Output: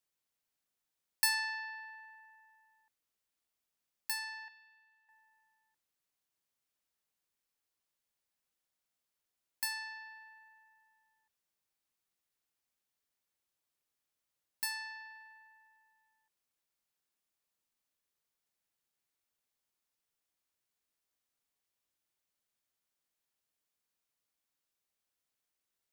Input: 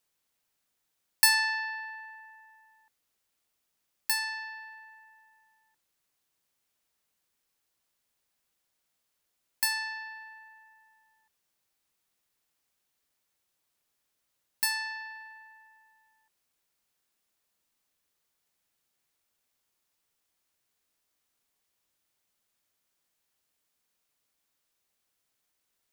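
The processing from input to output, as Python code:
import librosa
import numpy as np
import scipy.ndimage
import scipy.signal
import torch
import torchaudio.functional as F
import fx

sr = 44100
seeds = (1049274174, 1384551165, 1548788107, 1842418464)

y = fx.cheby_ripple_highpass(x, sr, hz=900.0, ripple_db=9, at=(4.48, 5.09))
y = F.gain(torch.from_numpy(y), -8.5).numpy()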